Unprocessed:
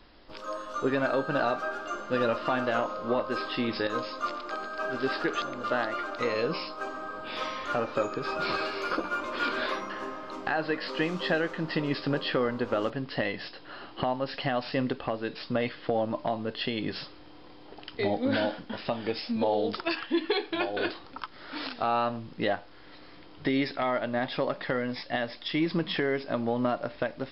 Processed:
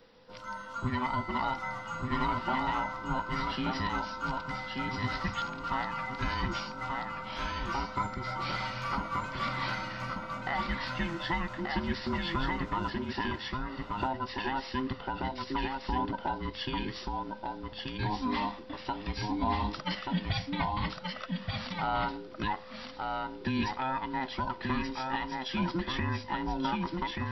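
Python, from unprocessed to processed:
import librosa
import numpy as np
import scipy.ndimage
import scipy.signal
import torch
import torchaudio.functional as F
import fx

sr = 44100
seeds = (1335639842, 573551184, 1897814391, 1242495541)

p1 = fx.band_invert(x, sr, width_hz=500)
p2 = p1 + fx.echo_single(p1, sr, ms=1182, db=-3.5, dry=0)
y = p2 * 10.0 ** (-4.5 / 20.0)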